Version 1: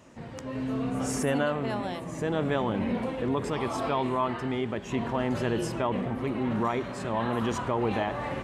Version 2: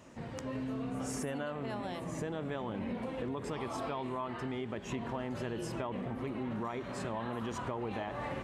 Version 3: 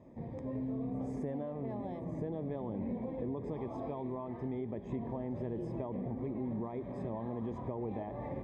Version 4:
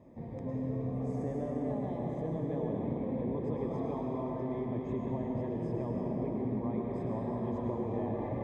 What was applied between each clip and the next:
compressor, threshold -33 dBFS, peak gain reduction 10.5 dB; gain -1.5 dB
running mean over 31 samples; gain +1 dB
reverb RT60 3.5 s, pre-delay 0.1 s, DRR -1.5 dB

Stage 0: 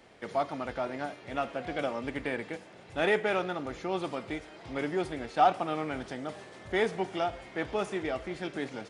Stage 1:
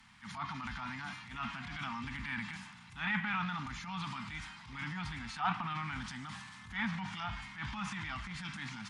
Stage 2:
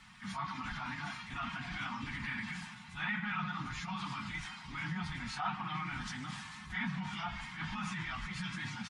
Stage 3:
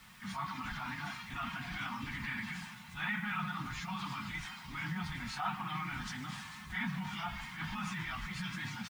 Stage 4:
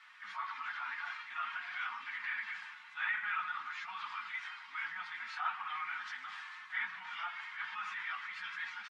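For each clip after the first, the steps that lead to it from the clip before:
treble ducked by the level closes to 2900 Hz, closed at -24 dBFS; Chebyshev band-stop 220–960 Hz, order 3; transient shaper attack -10 dB, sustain +6 dB; gain +1 dB
phase scrambler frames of 50 ms; comb 5.5 ms, depth 32%; compressor 2:1, threshold -41 dBFS, peak gain reduction 8 dB; gain +3 dB
bit-crush 10-bit
ladder band-pass 1800 Hz, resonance 30%; gain +11.5 dB

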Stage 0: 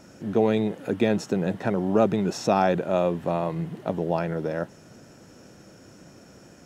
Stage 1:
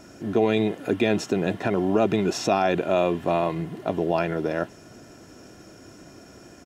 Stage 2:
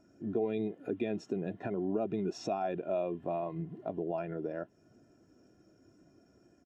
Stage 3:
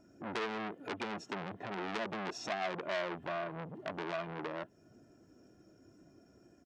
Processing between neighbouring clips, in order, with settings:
comb 2.9 ms, depth 37%; dynamic EQ 2800 Hz, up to +6 dB, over -46 dBFS, Q 1.4; limiter -13.5 dBFS, peak gain reduction 5.5 dB; gain +2.5 dB
compressor 2:1, threshold -29 dBFS, peak gain reduction 7.5 dB; spectral expander 1.5:1; gain -7 dB
core saturation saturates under 2700 Hz; gain +1.5 dB

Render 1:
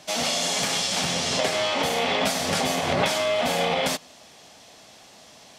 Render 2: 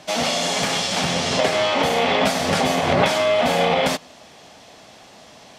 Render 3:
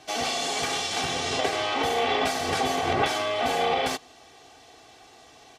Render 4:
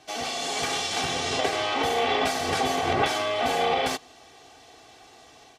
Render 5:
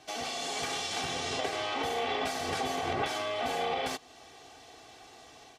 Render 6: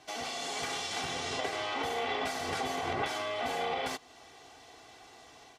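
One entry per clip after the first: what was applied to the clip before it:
high shelf 4000 Hz -8.5 dB; gain +6 dB
comb 2.6 ms, depth 73%; gain -7.5 dB
AGC gain up to 4 dB; gain -3.5 dB
compressor 1.5:1, threshold -38 dBFS, peak gain reduction 7 dB; gain -1.5 dB
small resonant body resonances 1000/1400/2000 Hz, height 8 dB; gain -2 dB

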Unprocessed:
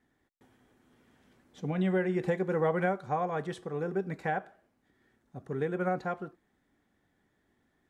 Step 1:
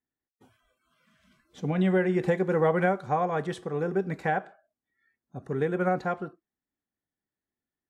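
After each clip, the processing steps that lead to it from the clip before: spectral noise reduction 25 dB; gain +4.5 dB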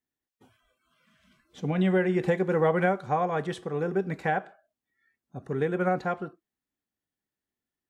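bell 2900 Hz +2.5 dB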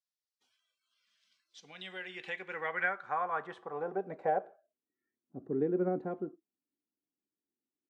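band-pass sweep 4800 Hz -> 310 Hz, 1.63–5.05; gain +2 dB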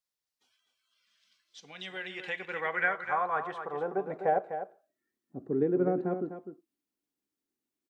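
echo 0.251 s -9.5 dB; gain +3.5 dB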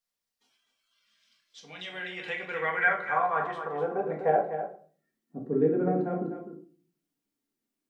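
shoebox room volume 320 m³, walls furnished, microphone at 1.7 m

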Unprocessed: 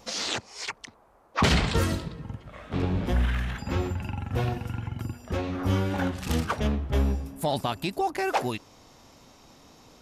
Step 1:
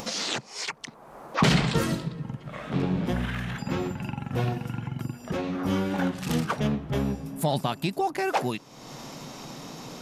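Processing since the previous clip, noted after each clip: resonant low shelf 110 Hz -8 dB, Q 3; upward compressor, threshold -28 dBFS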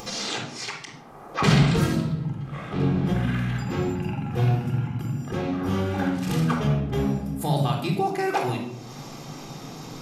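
shoebox room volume 2200 m³, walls furnished, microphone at 3.8 m; gain -3 dB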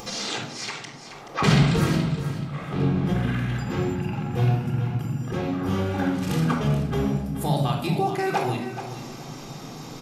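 feedback echo 0.428 s, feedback 24%, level -11 dB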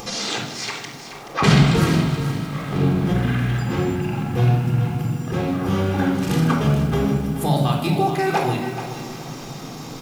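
lo-fi delay 0.155 s, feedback 80%, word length 7-bit, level -13.5 dB; gain +4 dB

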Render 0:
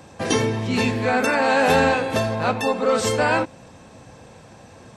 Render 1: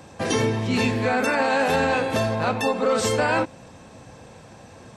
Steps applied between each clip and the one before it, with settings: limiter -12 dBFS, peak gain reduction 6 dB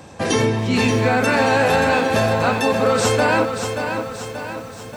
lo-fi delay 0.581 s, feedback 55%, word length 8-bit, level -7 dB; gain +4 dB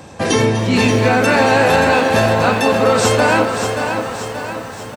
frequency-shifting echo 0.248 s, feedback 63%, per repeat +88 Hz, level -13 dB; gain +3.5 dB

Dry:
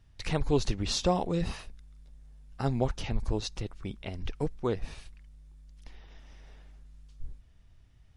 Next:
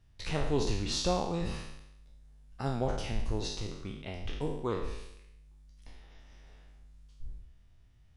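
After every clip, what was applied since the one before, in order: spectral trails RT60 0.84 s; gain -5 dB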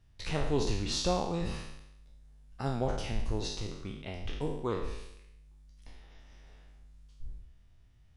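nothing audible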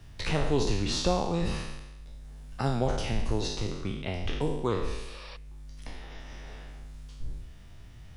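spectral repair 5.09–5.34, 490–5800 Hz before; three-band squash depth 40%; gain +5 dB

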